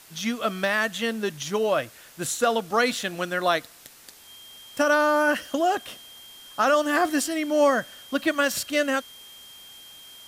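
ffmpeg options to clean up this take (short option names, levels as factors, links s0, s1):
-af "bandreject=f=3200:w=30,afwtdn=0.0035"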